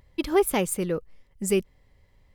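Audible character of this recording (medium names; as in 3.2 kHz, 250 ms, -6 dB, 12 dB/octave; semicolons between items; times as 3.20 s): noise floor -61 dBFS; spectral tilt -4.5 dB/octave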